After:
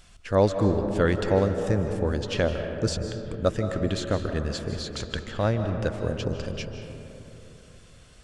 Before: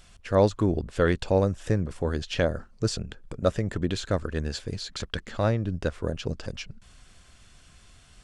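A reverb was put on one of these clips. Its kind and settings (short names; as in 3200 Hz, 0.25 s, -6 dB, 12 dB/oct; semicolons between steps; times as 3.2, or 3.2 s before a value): digital reverb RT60 3.3 s, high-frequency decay 0.3×, pre-delay 0.115 s, DRR 6 dB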